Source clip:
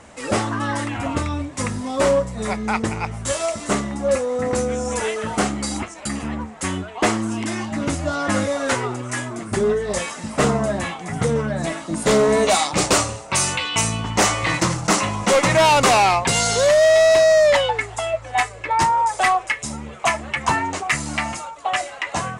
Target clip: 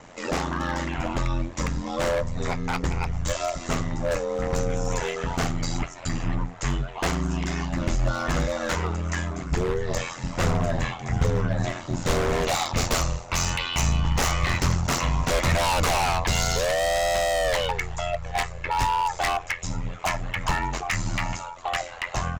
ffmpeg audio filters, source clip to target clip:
ffmpeg -i in.wav -filter_complex "[0:a]aresample=16000,aresample=44100,asplit=2[link_01][link_02];[link_02]alimiter=limit=-19dB:level=0:latency=1:release=497,volume=-2dB[link_03];[link_01][link_03]amix=inputs=2:normalize=0,aeval=exprs='val(0)*sin(2*PI*43*n/s)':channel_layout=same,aeval=exprs='0.211*(abs(mod(val(0)/0.211+3,4)-2)-1)':channel_layout=same,asubboost=boost=5:cutoff=110,volume=-4dB" out.wav

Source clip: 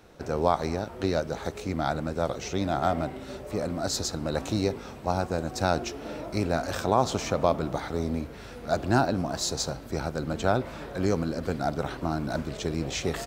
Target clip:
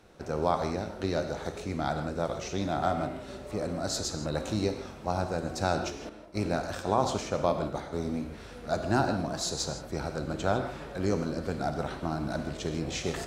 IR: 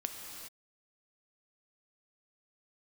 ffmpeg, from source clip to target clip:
-filter_complex "[0:a]asettb=1/sr,asplit=3[link_01][link_02][link_03];[link_01]atrim=end=6.094[link_04];[link_02]atrim=start=6.09:end=7.93,asetpts=PTS-STARTPTS,afade=type=in:duration=0.004:curve=qsin,afade=type=out:start_time=1.836:duration=0.004:curve=qsin,agate=range=-33dB:threshold=-27dB:ratio=3:detection=peak[link_05];[link_03]atrim=start=7.926[link_06];[link_04][link_05]acrossfade=duration=0.004:curve1=hsin:curve2=qsin[link_07];[link_07][link_06]acrossfade=duration=0.004:curve1=qsin:curve2=hsin[link_08];[1:a]atrim=start_sample=2205,atrim=end_sample=3969,asetrate=22932,aresample=44100[link_09];[link_08][link_09]afir=irnorm=-1:irlink=0,volume=-5.5dB"

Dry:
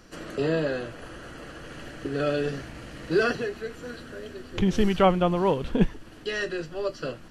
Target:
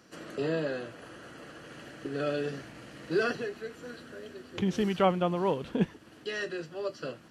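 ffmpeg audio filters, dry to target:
ffmpeg -i in.wav -af "highpass=120,volume=-5dB" out.wav

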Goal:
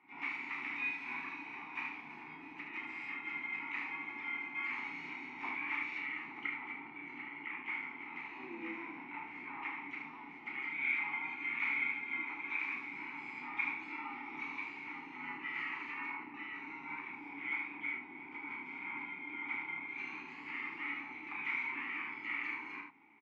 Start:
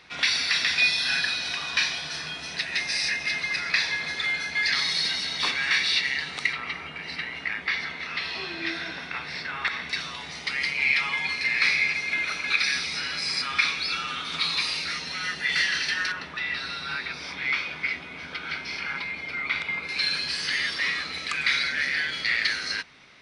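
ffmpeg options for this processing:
ffmpeg -i in.wav -filter_complex "[0:a]highpass=frequency=66:width=0.5412,highpass=frequency=66:width=1.3066,bandreject=frequency=60:width_type=h:width=6,bandreject=frequency=120:width_type=h:width=6,bandreject=frequency=180:width_type=h:width=6,bandreject=frequency=240:width_type=h:width=6,bandreject=frequency=300:width_type=h:width=6,asplit=4[link_01][link_02][link_03][link_04];[link_02]asetrate=29433,aresample=44100,atempo=1.49831,volume=-8dB[link_05];[link_03]asetrate=35002,aresample=44100,atempo=1.25992,volume=-15dB[link_06];[link_04]asetrate=66075,aresample=44100,atempo=0.66742,volume=-2dB[link_07];[link_01][link_05][link_06][link_07]amix=inputs=4:normalize=0,firequalizer=gain_entry='entry(620,0);entry(1700,7);entry(3400,-17);entry(8100,-21)':delay=0.05:min_phase=1,flanger=delay=7.2:depth=4.8:regen=-59:speed=1.9:shape=triangular,asplit=3[link_08][link_09][link_10];[link_08]bandpass=frequency=300:width_type=q:width=8,volume=0dB[link_11];[link_09]bandpass=frequency=870:width_type=q:width=8,volume=-6dB[link_12];[link_10]bandpass=frequency=2240:width_type=q:width=8,volume=-9dB[link_13];[link_11][link_12][link_13]amix=inputs=3:normalize=0,aecho=1:1:32|76:0.562|0.501,volume=3dB" out.wav

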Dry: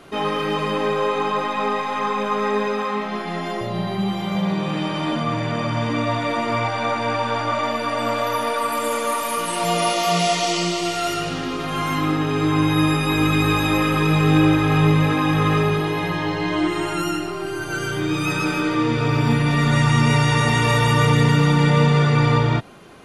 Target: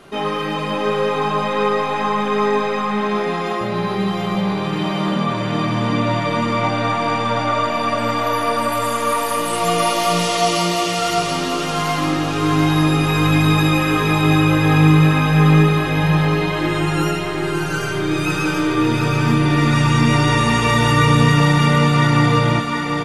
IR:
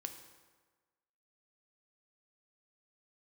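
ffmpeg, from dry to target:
-filter_complex "[0:a]asplit=2[link_01][link_02];[link_02]aecho=0:1:559:0.376[link_03];[link_01][link_03]amix=inputs=2:normalize=0,flanger=delay=5:depth=1.1:regen=-64:speed=0.78:shape=sinusoidal,asplit=2[link_04][link_05];[link_05]aecho=0:1:733|1466|2199|2932|3665|4398|5131:0.531|0.276|0.144|0.0746|0.0388|0.0202|0.0105[link_06];[link_04][link_06]amix=inputs=2:normalize=0,volume=5dB"

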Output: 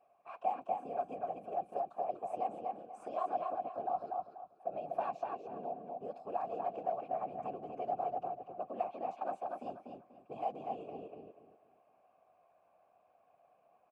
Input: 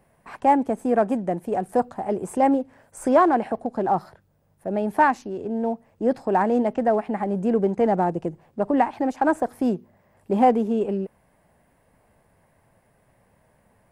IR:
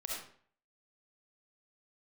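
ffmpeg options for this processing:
-filter_complex "[0:a]acrossover=split=150|3000[link_01][link_02][link_03];[link_02]acompressor=threshold=-30dB:ratio=5[link_04];[link_01][link_04][link_03]amix=inputs=3:normalize=0,afftfilt=real='hypot(re,im)*cos(2*PI*random(0))':imag='hypot(re,im)*sin(2*PI*random(1))':win_size=512:overlap=0.75,afreqshift=-17,asplit=3[link_05][link_06][link_07];[link_05]bandpass=frequency=730:width_type=q:width=8,volume=0dB[link_08];[link_06]bandpass=frequency=1090:width_type=q:width=8,volume=-6dB[link_09];[link_07]bandpass=frequency=2440:width_type=q:width=8,volume=-9dB[link_10];[link_08][link_09][link_10]amix=inputs=3:normalize=0,asplit=2[link_11][link_12];[link_12]adelay=243,lowpass=frequency=3900:poles=1,volume=-3dB,asplit=2[link_13][link_14];[link_14]adelay=243,lowpass=frequency=3900:poles=1,volume=0.28,asplit=2[link_15][link_16];[link_16]adelay=243,lowpass=frequency=3900:poles=1,volume=0.28,asplit=2[link_17][link_18];[link_18]adelay=243,lowpass=frequency=3900:poles=1,volume=0.28[link_19];[link_13][link_15][link_17][link_19]amix=inputs=4:normalize=0[link_20];[link_11][link_20]amix=inputs=2:normalize=0,volume=7.5dB"

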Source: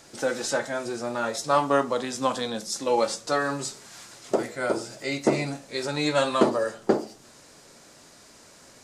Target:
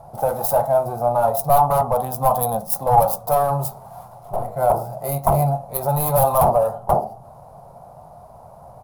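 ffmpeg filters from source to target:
ffmpeg -i in.wav -filter_complex "[0:a]asettb=1/sr,asplit=3[link_01][link_02][link_03];[link_01]atrim=end=4.084[link_04];[link_02]atrim=start=4.08:end=4.56,asetpts=PTS-STARTPTS,afade=type=in:duration=0.004:curve=qsin,afade=type=out:start_time=0.476:duration=0.004:curve=qsin,aeval=exprs='(tanh(44.7*val(0)+0.45)-tanh(0.45))/44.7':channel_layout=same[link_05];[link_03]atrim=start=4.556[link_06];[link_04][link_05]acrossfade=duration=0.004:curve1=hsin:curve2=qsin[link_07];[link_07][link_06]acrossfade=duration=0.004:curve1=qsin:curve2=hsin,adynamicsmooth=sensitivity=5:basefreq=2400,aeval=exprs='0.562*sin(PI/2*5.62*val(0)/0.562)':channel_layout=same,firequalizer=gain_entry='entry(140,0);entry(290,-25);entry(720,6);entry(1700,-29);entry(7500,-17);entry(11000,14)':delay=0.05:min_phase=1,volume=-2.5dB" out.wav

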